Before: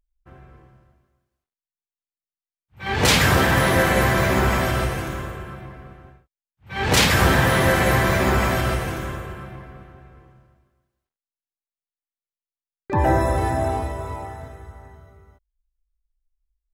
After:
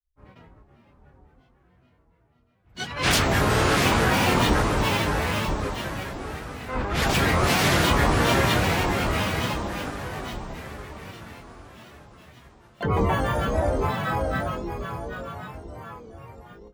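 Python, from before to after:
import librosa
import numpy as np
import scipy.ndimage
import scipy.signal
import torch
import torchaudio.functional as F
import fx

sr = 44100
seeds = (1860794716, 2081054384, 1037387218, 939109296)

y = fx.echo_diffused(x, sr, ms=655, feedback_pct=52, wet_db=-3)
y = fx.granulator(y, sr, seeds[0], grain_ms=176.0, per_s=14.0, spray_ms=100.0, spread_st=12)
y = y * librosa.db_to_amplitude(-2.0)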